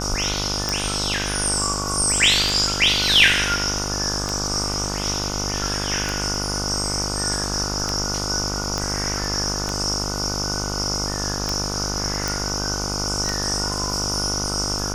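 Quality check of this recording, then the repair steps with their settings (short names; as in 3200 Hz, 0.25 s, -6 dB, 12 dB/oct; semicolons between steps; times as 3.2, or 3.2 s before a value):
buzz 50 Hz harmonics 30 -28 dBFS
tick 33 1/3 rpm -8 dBFS
8.78 pop -12 dBFS
12.28 pop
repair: de-click; de-hum 50 Hz, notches 30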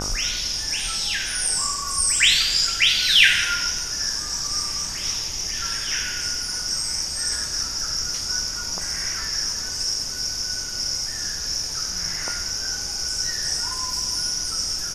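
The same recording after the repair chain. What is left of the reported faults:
8.78 pop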